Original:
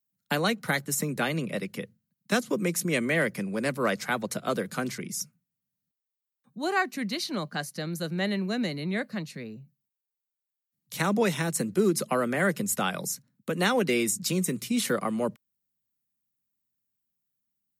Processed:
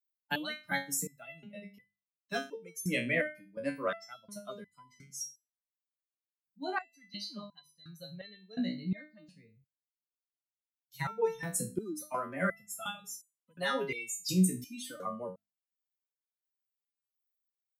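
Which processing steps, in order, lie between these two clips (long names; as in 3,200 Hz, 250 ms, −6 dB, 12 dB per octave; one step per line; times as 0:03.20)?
spectral dynamics exaggerated over time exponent 2
mains-hum notches 50/100/150/200/250 Hz
step-sequenced resonator 2.8 Hz 62–1,000 Hz
level +9 dB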